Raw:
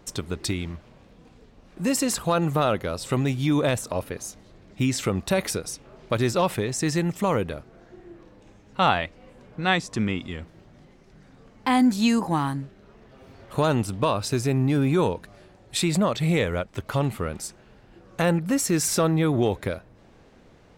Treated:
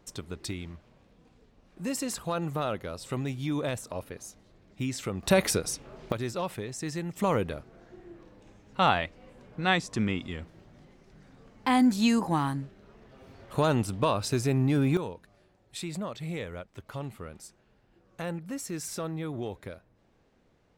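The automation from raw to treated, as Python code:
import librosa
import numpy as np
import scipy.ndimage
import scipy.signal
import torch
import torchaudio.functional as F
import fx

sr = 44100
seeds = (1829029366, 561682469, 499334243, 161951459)

y = fx.gain(x, sr, db=fx.steps((0.0, -8.5), (5.23, 1.0), (6.12, -10.0), (7.17, -3.0), (14.97, -13.0)))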